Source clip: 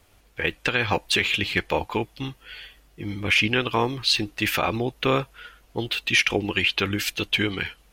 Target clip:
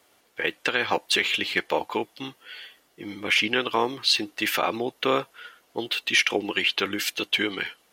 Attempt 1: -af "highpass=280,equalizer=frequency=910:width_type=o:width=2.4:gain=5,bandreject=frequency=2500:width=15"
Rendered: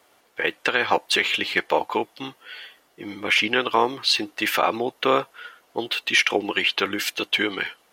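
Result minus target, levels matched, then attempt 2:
1,000 Hz band +2.5 dB
-af "highpass=280,bandreject=frequency=2500:width=15"

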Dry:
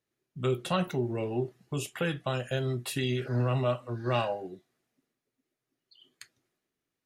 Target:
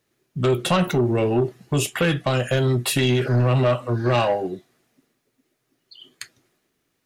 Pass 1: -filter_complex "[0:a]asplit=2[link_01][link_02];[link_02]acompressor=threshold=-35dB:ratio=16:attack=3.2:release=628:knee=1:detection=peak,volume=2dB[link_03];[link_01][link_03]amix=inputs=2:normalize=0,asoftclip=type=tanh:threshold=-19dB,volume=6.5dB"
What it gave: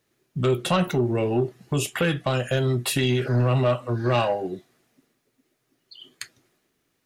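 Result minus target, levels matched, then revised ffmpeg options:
downward compressor: peak gain reduction +11 dB
-filter_complex "[0:a]asplit=2[link_01][link_02];[link_02]acompressor=threshold=-23.5dB:ratio=16:attack=3.2:release=628:knee=1:detection=peak,volume=2dB[link_03];[link_01][link_03]amix=inputs=2:normalize=0,asoftclip=type=tanh:threshold=-19dB,volume=6.5dB"

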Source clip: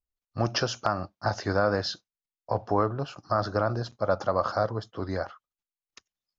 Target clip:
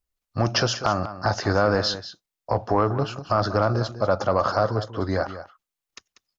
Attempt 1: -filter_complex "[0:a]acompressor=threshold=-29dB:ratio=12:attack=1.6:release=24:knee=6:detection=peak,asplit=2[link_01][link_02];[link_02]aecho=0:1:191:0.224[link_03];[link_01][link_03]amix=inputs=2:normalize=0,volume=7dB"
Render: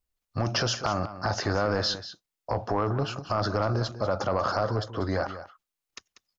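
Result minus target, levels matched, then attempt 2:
downward compressor: peak gain reduction +6.5 dB
-filter_complex "[0:a]acompressor=threshold=-21dB:ratio=12:attack=1.6:release=24:knee=6:detection=peak,asplit=2[link_01][link_02];[link_02]aecho=0:1:191:0.224[link_03];[link_01][link_03]amix=inputs=2:normalize=0,volume=7dB"

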